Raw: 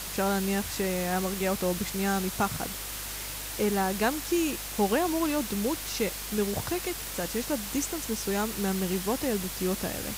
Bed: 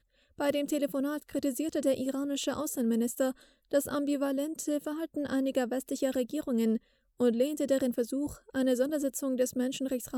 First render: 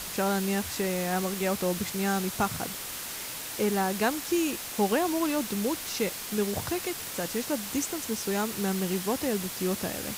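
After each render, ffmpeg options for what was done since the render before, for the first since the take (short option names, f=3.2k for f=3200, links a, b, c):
-af "bandreject=f=50:t=h:w=4,bandreject=f=100:t=h:w=4,bandreject=f=150:t=h:w=4"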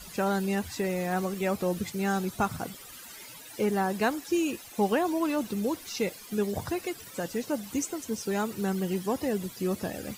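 -af "afftdn=nr=15:nf=-38"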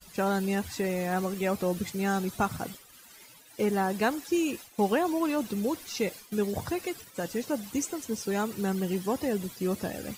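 -af "agate=range=-33dB:threshold=-39dB:ratio=3:detection=peak"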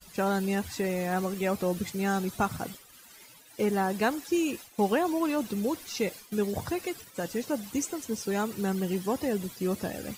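-af anull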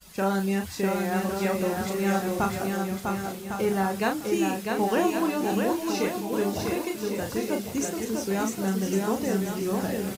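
-filter_complex "[0:a]asplit=2[a][b];[b]adelay=36,volume=-5.5dB[c];[a][c]amix=inputs=2:normalize=0,aecho=1:1:650|1105|1424|1646|1803:0.631|0.398|0.251|0.158|0.1"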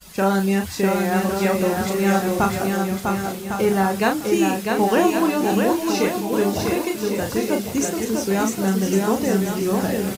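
-af "volume=6.5dB"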